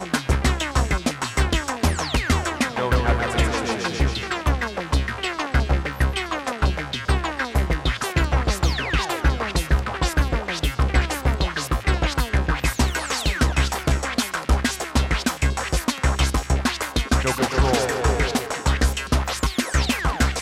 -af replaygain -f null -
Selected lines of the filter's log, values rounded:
track_gain = +5.0 dB
track_peak = 0.286